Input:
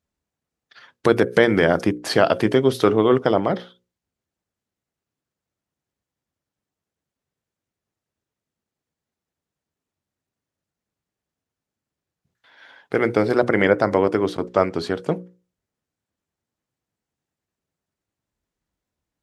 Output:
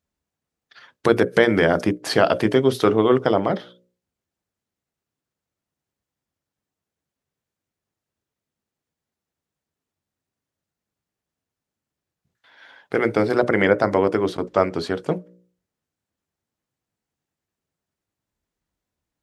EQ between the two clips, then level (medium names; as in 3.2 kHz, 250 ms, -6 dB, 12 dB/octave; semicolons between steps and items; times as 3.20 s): hum notches 60/120/180/240/300/360/420/480/540/600 Hz; 0.0 dB